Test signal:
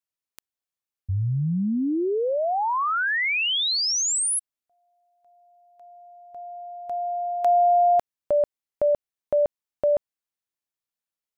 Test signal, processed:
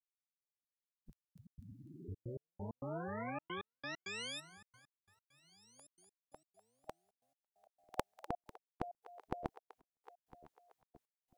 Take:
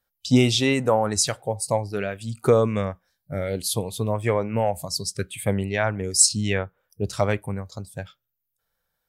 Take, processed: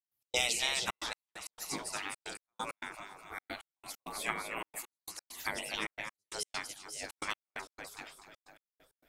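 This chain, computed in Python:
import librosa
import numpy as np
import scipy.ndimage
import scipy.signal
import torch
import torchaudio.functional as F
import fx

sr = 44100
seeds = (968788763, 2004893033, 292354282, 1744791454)

y = fx.echo_split(x, sr, split_hz=530.0, low_ms=497, high_ms=248, feedback_pct=52, wet_db=-14.0)
y = fx.spec_gate(y, sr, threshold_db=-20, keep='weak')
y = fx.step_gate(y, sr, bpm=133, pattern='.x.xxxxx.x.', floor_db=-60.0, edge_ms=4.5)
y = F.gain(torch.from_numpy(y), 2.0).numpy()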